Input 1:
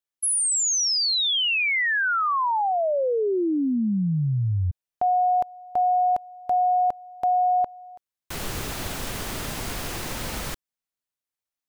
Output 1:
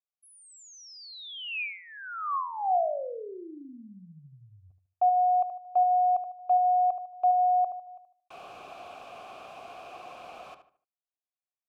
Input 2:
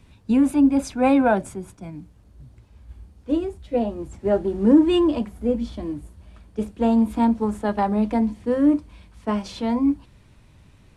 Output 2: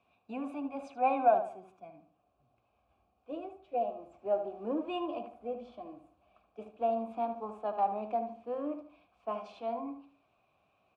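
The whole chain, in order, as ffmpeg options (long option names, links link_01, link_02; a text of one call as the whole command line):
ffmpeg -i in.wav -filter_complex "[0:a]asplit=3[link_01][link_02][link_03];[link_01]bandpass=frequency=730:width_type=q:width=8,volume=0dB[link_04];[link_02]bandpass=frequency=1090:width_type=q:width=8,volume=-6dB[link_05];[link_03]bandpass=frequency=2440:width_type=q:width=8,volume=-9dB[link_06];[link_04][link_05][link_06]amix=inputs=3:normalize=0,asplit=2[link_07][link_08];[link_08]adelay=75,lowpass=frequency=2700:poles=1,volume=-8.5dB,asplit=2[link_09][link_10];[link_10]adelay=75,lowpass=frequency=2700:poles=1,volume=0.35,asplit=2[link_11][link_12];[link_12]adelay=75,lowpass=frequency=2700:poles=1,volume=0.35,asplit=2[link_13][link_14];[link_14]adelay=75,lowpass=frequency=2700:poles=1,volume=0.35[link_15];[link_07][link_09][link_11][link_13][link_15]amix=inputs=5:normalize=0" out.wav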